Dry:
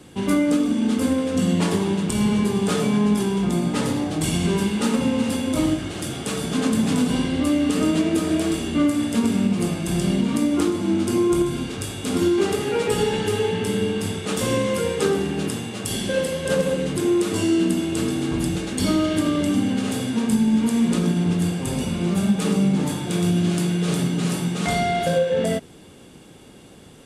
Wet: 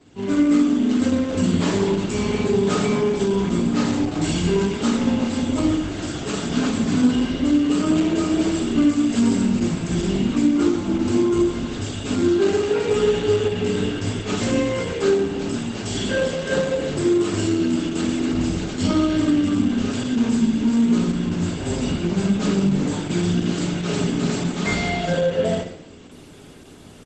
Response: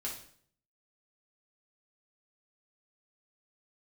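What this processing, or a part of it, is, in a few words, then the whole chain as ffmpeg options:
speakerphone in a meeting room: -filter_complex "[0:a]asplit=3[s0][s1][s2];[s0]afade=t=out:st=8.74:d=0.02[s3];[s1]highshelf=f=4600:g=6,afade=t=in:st=8.74:d=0.02,afade=t=out:st=9.61:d=0.02[s4];[s2]afade=t=in:st=9.61:d=0.02[s5];[s3][s4][s5]amix=inputs=3:normalize=0,aecho=1:1:74|148:0.1|0.018[s6];[1:a]atrim=start_sample=2205[s7];[s6][s7]afir=irnorm=-1:irlink=0,asplit=2[s8][s9];[s9]adelay=160,highpass=300,lowpass=3400,asoftclip=type=hard:threshold=0.178,volume=0.158[s10];[s8][s10]amix=inputs=2:normalize=0,dynaudnorm=f=130:g=5:m=2.37,volume=0.562" -ar 48000 -c:a libopus -b:a 12k

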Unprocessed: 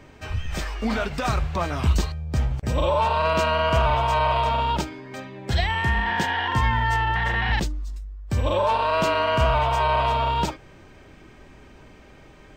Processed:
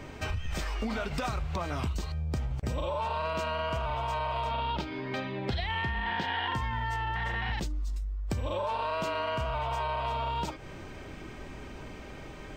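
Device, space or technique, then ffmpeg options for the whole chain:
serial compression, leveller first: -filter_complex "[0:a]bandreject=f=1700:w=18,acompressor=threshold=0.0501:ratio=2.5,acompressor=threshold=0.0178:ratio=4,asettb=1/sr,asplit=3[s0][s1][s2];[s0]atrim=end=4.514[s3];[s1]atrim=start=4.51:end=6.54,asetpts=PTS-STARTPTS,afade=t=in:d=0.004:c=qsin,afade=t=out:st=2.026:d=0.004:c=qsin,highshelf=f=5500:t=q:w=1.5:g=-11[s4];[s2]atrim=start=6.536[s5];[s3][s4]acrossfade=d=0.004:c1=hsin:c2=qsin[s6];[s6][s5]acrossfade=d=0.004:c1=qsin:c2=hsin,volume=1.68"

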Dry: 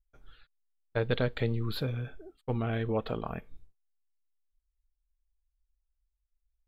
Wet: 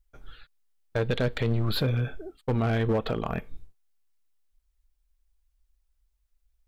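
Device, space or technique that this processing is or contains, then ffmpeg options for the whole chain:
limiter into clipper: -af "alimiter=level_in=1.06:limit=0.0631:level=0:latency=1:release=127,volume=0.944,asoftclip=type=hard:threshold=0.0376,volume=2.66"

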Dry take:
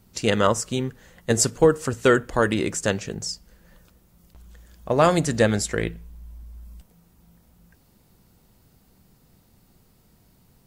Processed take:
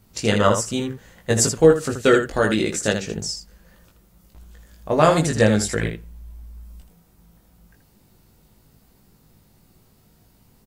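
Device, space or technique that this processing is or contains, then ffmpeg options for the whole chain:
slapback doubling: -filter_complex "[0:a]asettb=1/sr,asplit=3[s0][s1][s2];[s0]atrim=end=1.624[s3];[s1]atrim=start=1.62:end=3.04,asetpts=PTS-STARTPTS,afade=t=in:d=0.004:c=qsin,afade=t=out:st=1.416:d=0.004:c=qsin,equalizer=f=100:t=o:w=0.33:g=-6,equalizer=f=1000:t=o:w=0.33:g=-7,equalizer=f=4000:t=o:w=0.33:g=5[s4];[s2]atrim=start=3.036[s5];[s3][s4]acrossfade=d=0.004:c1=hsin:c2=qsin[s6];[s6][s5]acrossfade=d=0.004:c1=qsin:c2=hsin,asplit=3[s7][s8][s9];[s8]adelay=19,volume=0.708[s10];[s9]adelay=80,volume=0.447[s11];[s7][s10][s11]amix=inputs=3:normalize=0"

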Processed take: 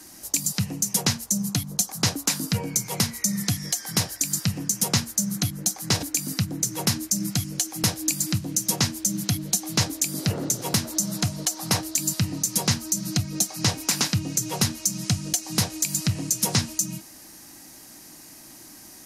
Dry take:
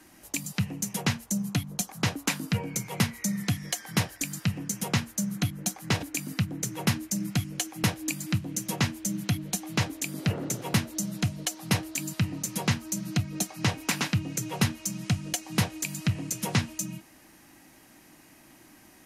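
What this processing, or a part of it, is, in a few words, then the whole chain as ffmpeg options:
over-bright horn tweeter: -filter_complex "[0:a]asettb=1/sr,asplit=3[s0][s1][s2];[s0]atrim=end=10.844[s3];[s1]atrim=start=10.84:end=11.81,asetpts=PTS-STARTPTS,afade=t=in:d=0.004:c=qsin,afade=t=out:st=0.966:d=0.004:c=qsin,equalizer=f=990:t=o:w=1.8:g=6[s4];[s2]atrim=start=11.806[s5];[s3][s4]acrossfade=d=0.004:c1=hsin:c2=qsin[s6];[s6][s5]acrossfade=d=0.004:c1=qsin:c2=hsin,highshelf=f=3700:t=q:w=1.5:g=8,alimiter=limit=0.211:level=0:latency=1:release=131,volume=1.68"

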